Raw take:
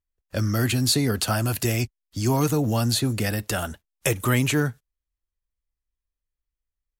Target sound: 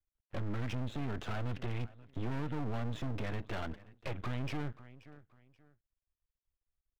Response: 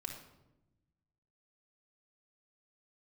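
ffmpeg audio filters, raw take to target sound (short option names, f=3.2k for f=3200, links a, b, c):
-af "acompressor=threshold=-23dB:ratio=6,aecho=1:1:530|1060:0.0631|0.0177,aresample=8000,asoftclip=type=tanh:threshold=-28.5dB,aresample=44100,highshelf=f=2.1k:g=-9,aeval=exprs='max(val(0),0)':c=same"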